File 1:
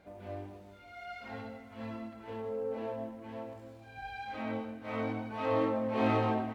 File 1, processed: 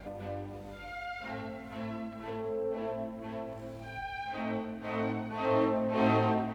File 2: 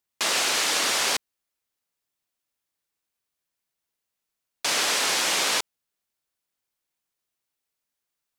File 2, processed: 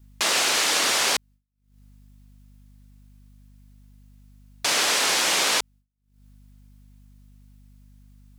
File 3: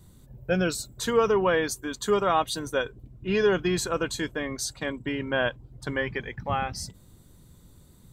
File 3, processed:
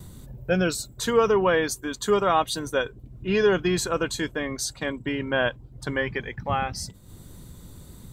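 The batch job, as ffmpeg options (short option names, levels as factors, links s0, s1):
-af "aeval=exprs='val(0)+0.000708*(sin(2*PI*50*n/s)+sin(2*PI*2*50*n/s)/2+sin(2*PI*3*50*n/s)/3+sin(2*PI*4*50*n/s)/4+sin(2*PI*5*50*n/s)/5)':c=same,acompressor=mode=upward:threshold=0.0158:ratio=2.5,agate=range=0.0224:threshold=0.00562:ratio=3:detection=peak,volume=1.26"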